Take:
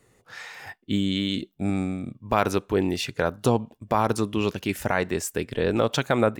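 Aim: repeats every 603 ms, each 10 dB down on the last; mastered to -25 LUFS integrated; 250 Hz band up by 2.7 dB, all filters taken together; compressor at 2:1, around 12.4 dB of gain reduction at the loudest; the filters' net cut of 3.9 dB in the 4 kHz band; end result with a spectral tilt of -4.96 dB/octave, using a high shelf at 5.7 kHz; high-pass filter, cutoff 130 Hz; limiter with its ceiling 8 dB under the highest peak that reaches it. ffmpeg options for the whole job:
-af "highpass=130,equalizer=f=250:t=o:g=4,equalizer=f=4000:t=o:g=-6.5,highshelf=f=5700:g=4,acompressor=threshold=0.0126:ratio=2,alimiter=limit=0.0631:level=0:latency=1,aecho=1:1:603|1206|1809|2412:0.316|0.101|0.0324|0.0104,volume=3.76"

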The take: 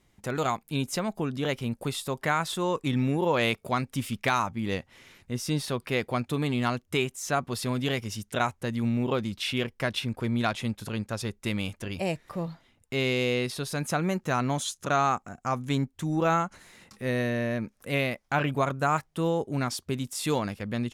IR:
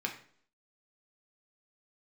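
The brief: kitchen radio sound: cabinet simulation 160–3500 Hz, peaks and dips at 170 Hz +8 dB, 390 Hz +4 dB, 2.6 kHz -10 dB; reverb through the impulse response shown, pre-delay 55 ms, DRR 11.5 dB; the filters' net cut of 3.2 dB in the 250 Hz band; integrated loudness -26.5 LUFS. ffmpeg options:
-filter_complex "[0:a]equalizer=f=250:t=o:g=-6,asplit=2[s0][s1];[1:a]atrim=start_sample=2205,adelay=55[s2];[s1][s2]afir=irnorm=-1:irlink=0,volume=0.168[s3];[s0][s3]amix=inputs=2:normalize=0,highpass=160,equalizer=f=170:t=q:w=4:g=8,equalizer=f=390:t=q:w=4:g=4,equalizer=f=2600:t=q:w=4:g=-10,lowpass=f=3500:w=0.5412,lowpass=f=3500:w=1.3066,volume=1.58"

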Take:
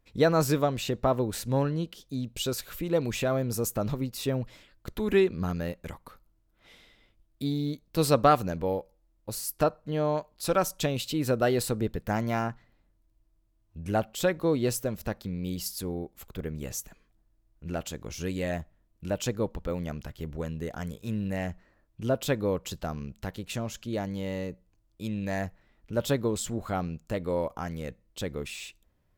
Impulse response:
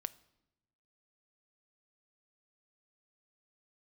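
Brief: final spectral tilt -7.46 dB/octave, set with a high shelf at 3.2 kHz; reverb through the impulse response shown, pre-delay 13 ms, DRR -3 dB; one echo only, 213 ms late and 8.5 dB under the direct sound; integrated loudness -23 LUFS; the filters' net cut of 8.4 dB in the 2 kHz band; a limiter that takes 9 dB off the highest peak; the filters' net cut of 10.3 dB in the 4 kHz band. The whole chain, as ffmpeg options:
-filter_complex "[0:a]equalizer=f=2000:t=o:g=-8,highshelf=f=3200:g=-7.5,equalizer=f=4000:t=o:g=-5,alimiter=limit=0.126:level=0:latency=1,aecho=1:1:213:0.376,asplit=2[s0][s1];[1:a]atrim=start_sample=2205,adelay=13[s2];[s1][s2]afir=irnorm=-1:irlink=0,volume=1.78[s3];[s0][s3]amix=inputs=2:normalize=0,volume=1.68"

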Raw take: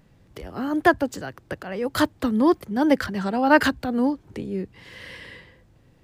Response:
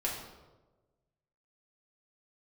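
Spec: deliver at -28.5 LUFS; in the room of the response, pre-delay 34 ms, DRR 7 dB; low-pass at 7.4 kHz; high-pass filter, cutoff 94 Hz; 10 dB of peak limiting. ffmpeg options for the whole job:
-filter_complex "[0:a]highpass=94,lowpass=7400,alimiter=limit=0.178:level=0:latency=1,asplit=2[s0][s1];[1:a]atrim=start_sample=2205,adelay=34[s2];[s1][s2]afir=irnorm=-1:irlink=0,volume=0.251[s3];[s0][s3]amix=inputs=2:normalize=0,volume=0.75"

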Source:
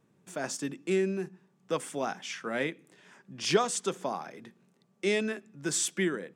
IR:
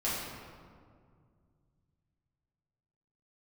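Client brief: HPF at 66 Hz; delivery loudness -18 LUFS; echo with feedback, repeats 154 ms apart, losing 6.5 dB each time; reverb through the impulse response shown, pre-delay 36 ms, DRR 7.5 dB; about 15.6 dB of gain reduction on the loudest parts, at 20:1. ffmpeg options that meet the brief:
-filter_complex "[0:a]highpass=66,acompressor=threshold=0.02:ratio=20,aecho=1:1:154|308|462|616|770|924:0.473|0.222|0.105|0.0491|0.0231|0.0109,asplit=2[s0][s1];[1:a]atrim=start_sample=2205,adelay=36[s2];[s1][s2]afir=irnorm=-1:irlink=0,volume=0.178[s3];[s0][s3]amix=inputs=2:normalize=0,volume=10.6"

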